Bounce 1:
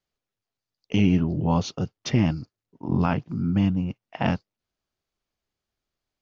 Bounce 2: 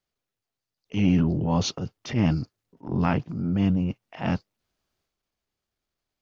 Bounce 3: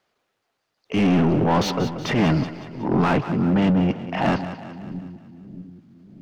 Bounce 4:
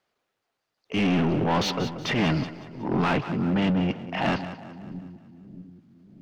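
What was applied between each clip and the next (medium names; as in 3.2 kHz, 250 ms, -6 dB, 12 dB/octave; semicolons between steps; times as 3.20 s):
transient shaper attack -9 dB, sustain +6 dB
overdrive pedal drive 30 dB, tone 1.2 kHz, clips at -7.5 dBFS; two-band feedback delay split 340 Hz, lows 627 ms, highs 185 ms, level -12 dB; trim -2 dB
dynamic bell 3.1 kHz, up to +6 dB, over -39 dBFS, Q 0.7; trim -5 dB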